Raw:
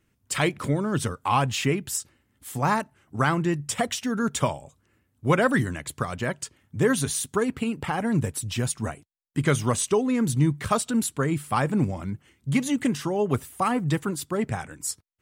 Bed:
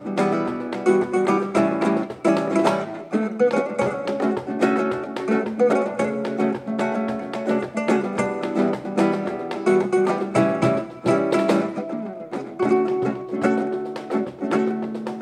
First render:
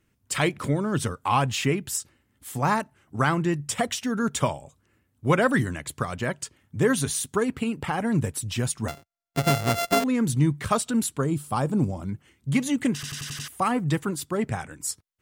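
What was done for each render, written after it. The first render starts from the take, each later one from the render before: 8.88–10.04 s: sorted samples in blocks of 64 samples; 11.21–12.09 s: peaking EQ 2 kHz -12 dB 1 oct; 12.94 s: stutter in place 0.09 s, 6 plays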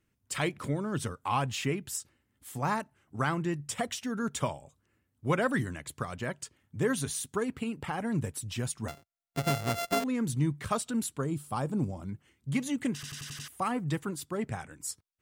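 trim -7 dB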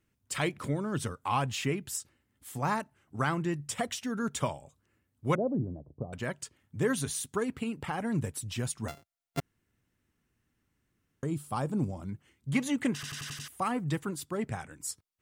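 5.35–6.13 s: steep low-pass 720 Hz; 9.40–11.23 s: room tone; 12.53–13.35 s: peaking EQ 1.1 kHz +5.5 dB 2.9 oct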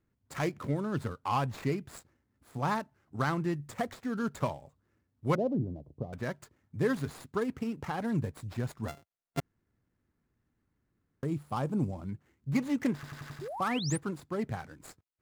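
median filter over 15 samples; 13.41–13.98 s: painted sound rise 340–10000 Hz -39 dBFS

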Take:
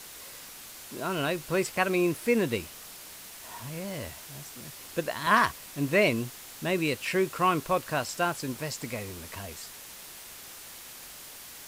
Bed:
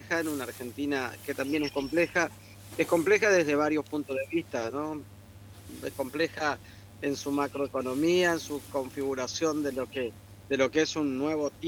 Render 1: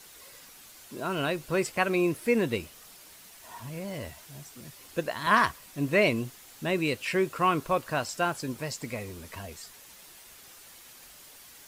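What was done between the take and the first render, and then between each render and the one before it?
noise reduction 7 dB, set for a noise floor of -46 dBFS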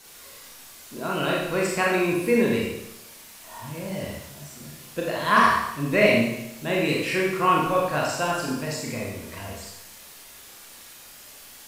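Schroeder reverb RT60 0.86 s, combs from 27 ms, DRR -3.5 dB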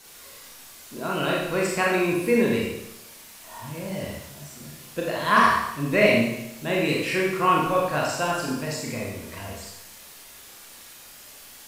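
no audible change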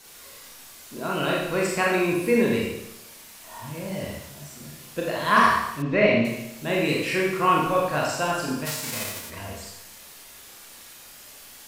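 5.82–6.25 s: distance through air 190 m; 8.65–9.29 s: formants flattened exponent 0.3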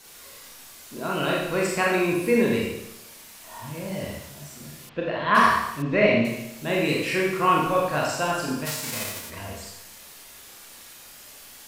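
4.89–5.35 s: low-pass 3.4 kHz 24 dB/octave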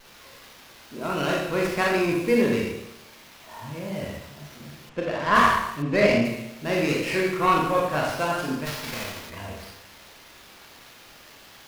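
wow and flutter 29 cents; sliding maximum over 5 samples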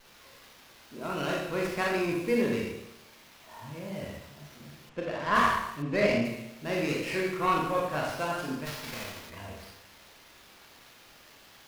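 trim -6 dB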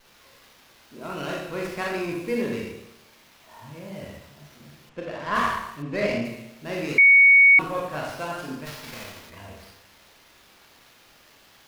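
6.98–7.59 s: bleep 2.23 kHz -10 dBFS

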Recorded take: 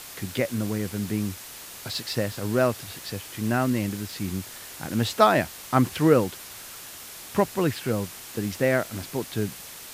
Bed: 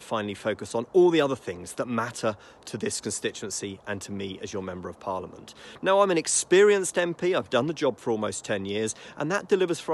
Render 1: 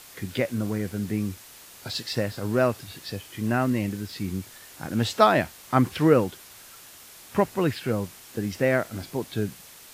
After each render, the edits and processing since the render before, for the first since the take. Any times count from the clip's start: noise print and reduce 6 dB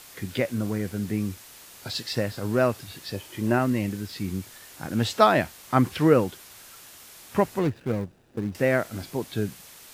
3.14–3.59 s: small resonant body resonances 360/570/900 Hz, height 8 dB; 7.59–8.55 s: median filter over 41 samples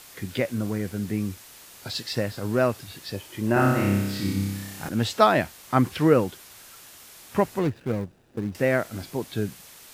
3.53–4.89 s: flutter echo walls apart 5.2 m, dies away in 1.1 s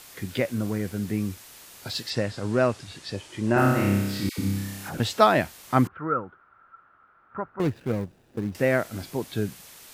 2.10–3.58 s: low-pass 9.1 kHz 24 dB/octave; 4.29–5.00 s: phase dispersion lows, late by 91 ms, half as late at 990 Hz; 5.87–7.60 s: four-pole ladder low-pass 1.4 kHz, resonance 85%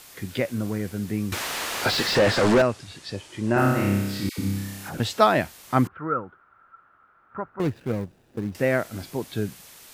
1.32–2.62 s: overdrive pedal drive 36 dB, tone 1.6 kHz, clips at -9.5 dBFS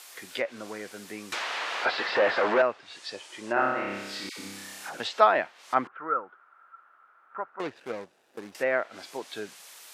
high-pass 570 Hz 12 dB/octave; low-pass that closes with the level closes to 2.4 kHz, closed at -25 dBFS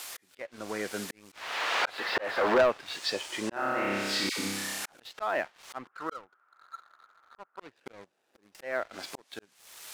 slow attack 633 ms; waveshaping leveller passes 2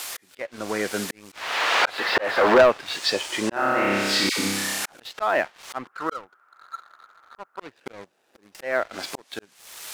trim +8 dB

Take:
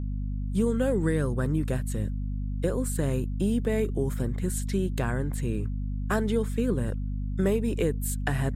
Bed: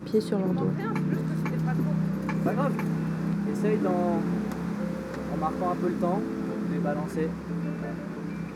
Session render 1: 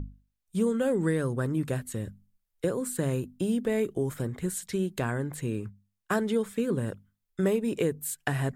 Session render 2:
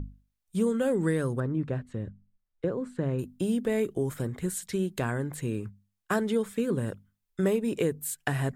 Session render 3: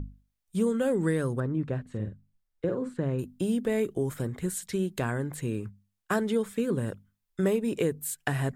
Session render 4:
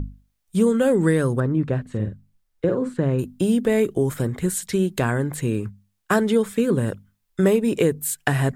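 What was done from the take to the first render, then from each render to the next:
hum notches 50/100/150/200/250 Hz
1.40–3.19 s: tape spacing loss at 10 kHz 29 dB
1.81–2.94 s: doubling 47 ms -7 dB
trim +8 dB

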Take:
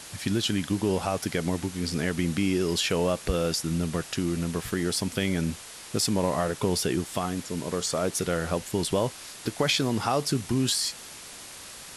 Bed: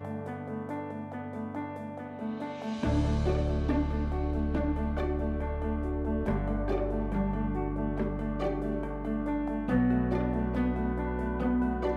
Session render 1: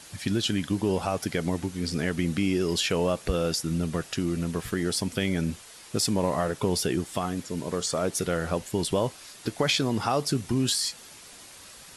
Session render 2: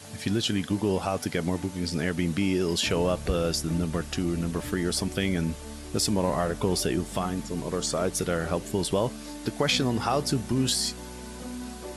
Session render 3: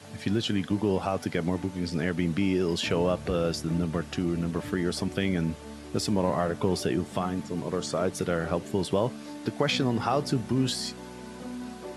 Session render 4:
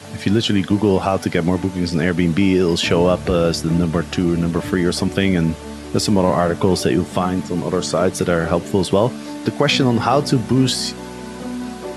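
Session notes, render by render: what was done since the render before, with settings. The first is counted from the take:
noise reduction 6 dB, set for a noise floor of -44 dBFS
add bed -9.5 dB
high-pass 84 Hz 24 dB/octave; treble shelf 5.2 kHz -11.5 dB
trim +10.5 dB; peak limiter -2 dBFS, peak gain reduction 2 dB

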